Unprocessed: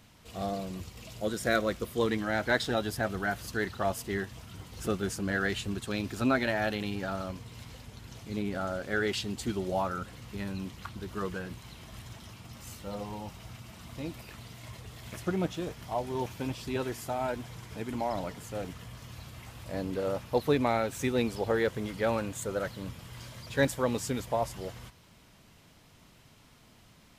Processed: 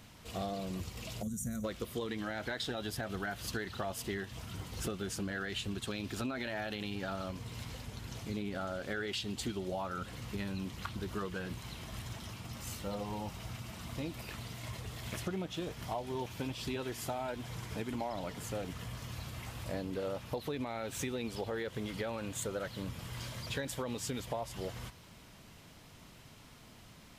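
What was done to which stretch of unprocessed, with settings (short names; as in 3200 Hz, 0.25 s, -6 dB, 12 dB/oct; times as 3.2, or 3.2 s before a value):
1.23–1.64 spectral gain 260–5700 Hz -23 dB
whole clip: dynamic EQ 3300 Hz, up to +5 dB, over -52 dBFS, Q 1.5; limiter -20.5 dBFS; compressor, threshold -37 dBFS; gain +2.5 dB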